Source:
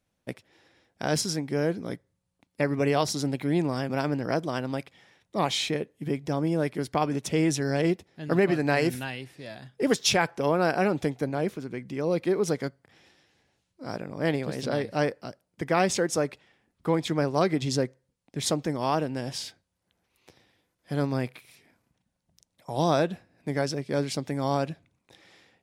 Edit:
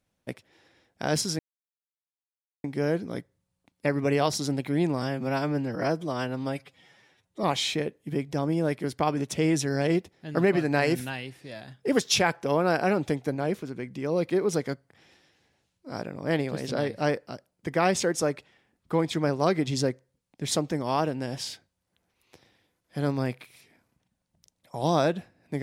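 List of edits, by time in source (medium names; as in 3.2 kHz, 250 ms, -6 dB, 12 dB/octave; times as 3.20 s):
1.39 s: insert silence 1.25 s
3.77–5.38 s: stretch 1.5×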